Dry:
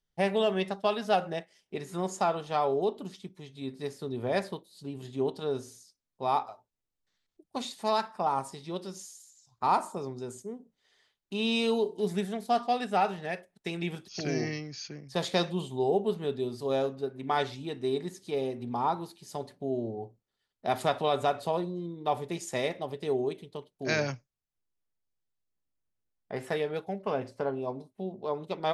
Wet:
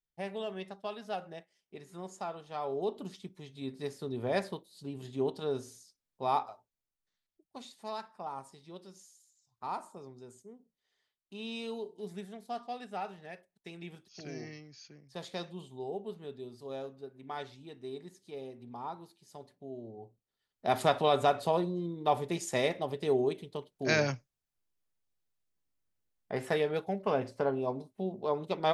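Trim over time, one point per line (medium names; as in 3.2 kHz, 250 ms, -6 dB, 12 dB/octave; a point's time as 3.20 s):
2.50 s -11.5 dB
3.00 s -2 dB
6.43 s -2 dB
7.59 s -12 dB
19.82 s -12 dB
20.77 s +1 dB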